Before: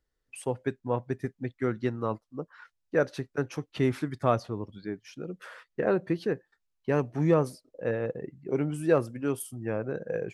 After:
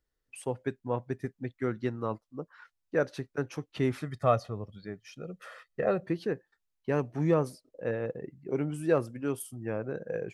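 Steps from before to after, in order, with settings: 3.97–6.04 s: comb 1.6 ms, depth 55%; trim -2.5 dB

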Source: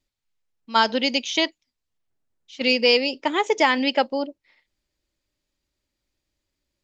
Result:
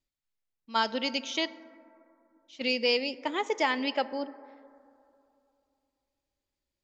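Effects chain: plate-style reverb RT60 2.7 s, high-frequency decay 0.25×, DRR 15.5 dB; trim -8.5 dB

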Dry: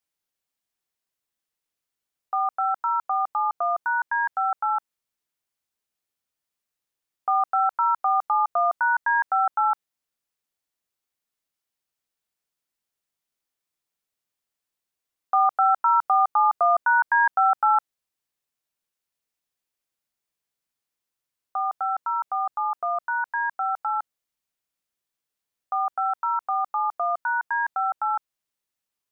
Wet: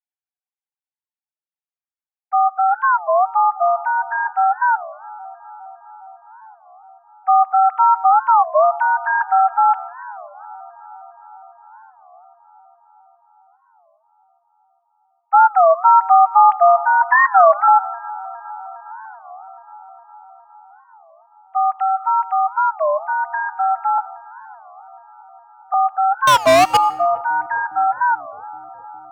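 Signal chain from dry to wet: formants replaced by sine waves; 23.98–25.74 s: inverse Chebyshev high-pass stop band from 350 Hz, stop band 40 dB; peaking EQ 990 Hz +7.5 dB 2.3 oct; 17.01–17.68 s: comb 3 ms, depth 79%; 26.29–26.77 s: waveshaping leveller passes 5; bucket-brigade echo 409 ms, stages 4096, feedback 75%, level -20.5 dB; reverberation RT60 0.65 s, pre-delay 45 ms, DRR 17.5 dB; warped record 33 1/3 rpm, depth 250 cents; trim +1 dB

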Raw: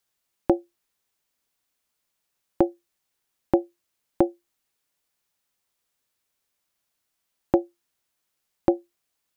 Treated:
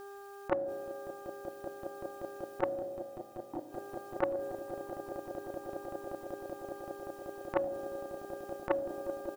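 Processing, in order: peaking EQ 490 Hz +3 dB 0.32 oct; comb 1.6 ms, depth 53%; compressor with a negative ratio -25 dBFS, ratio -0.5; mains buzz 400 Hz, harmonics 4, -54 dBFS -6 dB/octave; inverted gate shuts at -21 dBFS, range -26 dB; 2.66–3.61 s: two resonant band-passes 520 Hz, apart 1.7 oct; echo with a slow build-up 191 ms, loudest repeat 8, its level -14 dB; on a send at -10 dB: reverberation RT60 1.8 s, pre-delay 3 ms; on the sum: transformer saturation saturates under 980 Hz; trim +7 dB

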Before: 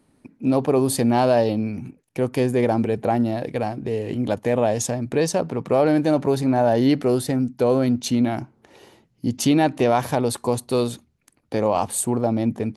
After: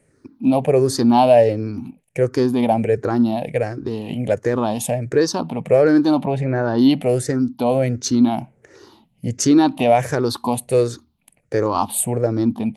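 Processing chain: drifting ripple filter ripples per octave 0.51, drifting -1.4 Hz, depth 15 dB; 6.25–6.79 s: low-pass 3.3 kHz 12 dB/octave

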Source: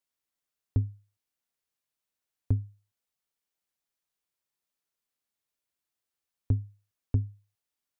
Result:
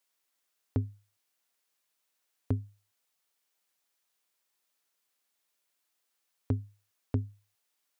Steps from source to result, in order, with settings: high-pass 450 Hz 6 dB/octave; trim +8.5 dB

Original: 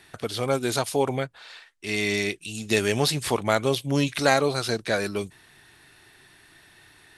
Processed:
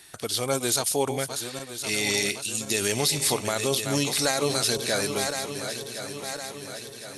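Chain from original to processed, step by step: backward echo that repeats 531 ms, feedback 73%, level -10 dB; tone controls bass -2 dB, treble +13 dB; peak limiter -10.5 dBFS, peak gain reduction 9 dB; trim -2 dB

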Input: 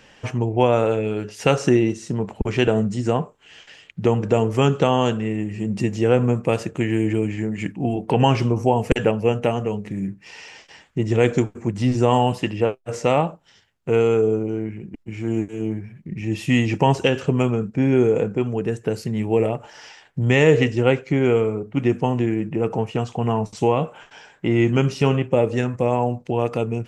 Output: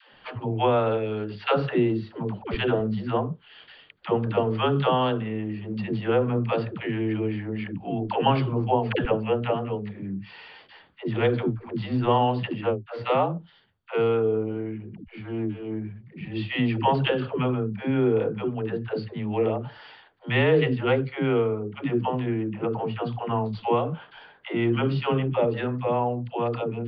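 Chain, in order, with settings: rippled Chebyshev low-pass 4.7 kHz, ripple 6 dB; phase dispersion lows, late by 132 ms, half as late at 360 Hz

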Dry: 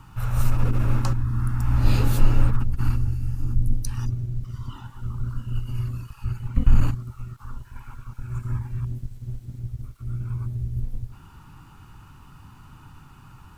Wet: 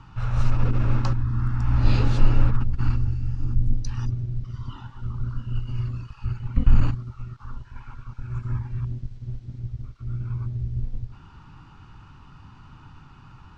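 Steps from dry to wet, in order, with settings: low-pass 5.6 kHz 24 dB/octave

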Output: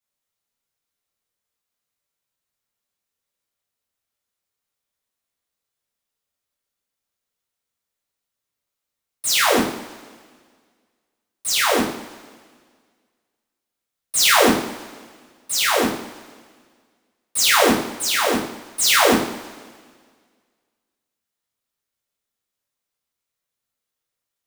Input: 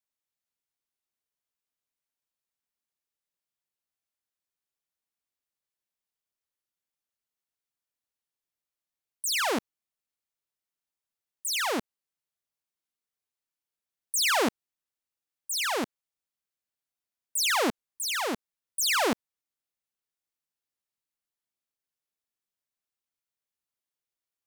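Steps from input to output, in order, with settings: square wave that keeps the level; two-slope reverb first 0.5 s, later 1.8 s, from -17 dB, DRR -7.5 dB; trim -2.5 dB

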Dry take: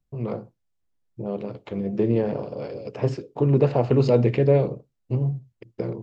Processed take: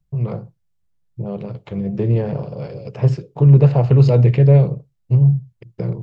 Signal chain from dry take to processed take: resonant low shelf 200 Hz +6 dB, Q 3; trim +1.5 dB

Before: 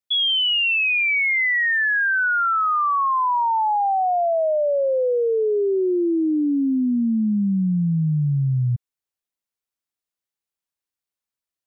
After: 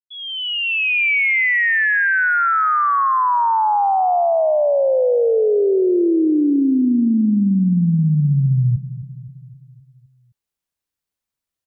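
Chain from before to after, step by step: fade-in on the opening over 1.05 s; bass shelf 210 Hz +7.5 dB; peak limiter -15.5 dBFS, peak gain reduction 4.5 dB; feedback delay 260 ms, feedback 56%, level -14.5 dB; trim +3 dB

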